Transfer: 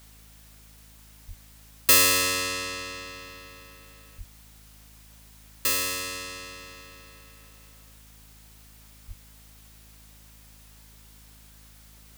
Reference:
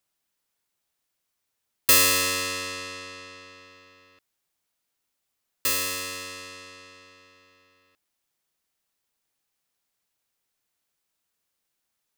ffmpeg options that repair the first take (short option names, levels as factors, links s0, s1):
-filter_complex "[0:a]bandreject=f=53.3:t=h:w=4,bandreject=f=106.6:t=h:w=4,bandreject=f=159.9:t=h:w=4,bandreject=f=213.2:t=h:w=4,bandreject=f=266.5:t=h:w=4,asplit=3[s0][s1][s2];[s0]afade=t=out:st=1.27:d=0.02[s3];[s1]highpass=f=140:w=0.5412,highpass=f=140:w=1.3066,afade=t=in:st=1.27:d=0.02,afade=t=out:st=1.39:d=0.02[s4];[s2]afade=t=in:st=1.39:d=0.02[s5];[s3][s4][s5]amix=inputs=3:normalize=0,asplit=3[s6][s7][s8];[s6]afade=t=out:st=4.17:d=0.02[s9];[s7]highpass=f=140:w=0.5412,highpass=f=140:w=1.3066,afade=t=in:st=4.17:d=0.02,afade=t=out:st=4.29:d=0.02[s10];[s8]afade=t=in:st=4.29:d=0.02[s11];[s9][s10][s11]amix=inputs=3:normalize=0,asplit=3[s12][s13][s14];[s12]afade=t=out:st=9.07:d=0.02[s15];[s13]highpass=f=140:w=0.5412,highpass=f=140:w=1.3066,afade=t=in:st=9.07:d=0.02,afade=t=out:st=9.19:d=0.02[s16];[s14]afade=t=in:st=9.19:d=0.02[s17];[s15][s16][s17]amix=inputs=3:normalize=0,afftdn=nr=28:nf=-52"